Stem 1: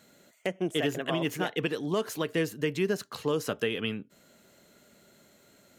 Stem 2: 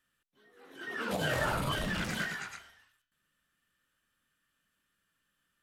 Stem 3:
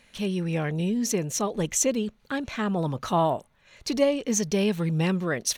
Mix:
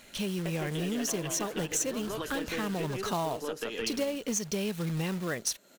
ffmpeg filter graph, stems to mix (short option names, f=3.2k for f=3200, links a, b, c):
-filter_complex "[0:a]highpass=230,aeval=exprs='0.15*(cos(1*acos(clip(val(0)/0.15,-1,1)))-cos(1*PI/2))+0.0237*(cos(2*acos(clip(val(0)/0.15,-1,1)))-cos(2*PI/2))':c=same,volume=3dB,asplit=2[a][b];[b]volume=-8dB[c];[1:a]adelay=500,volume=-3.5dB[d];[2:a]highshelf=f=3.6k:g=6,acrusher=bits=3:mode=log:mix=0:aa=0.000001,volume=0dB[e];[a][d]amix=inputs=2:normalize=0,bandreject=f=2.1k:w=12,acompressor=threshold=-33dB:ratio=3,volume=0dB[f];[c]aecho=0:1:164:1[g];[e][f][g]amix=inputs=3:normalize=0,acompressor=threshold=-31dB:ratio=3"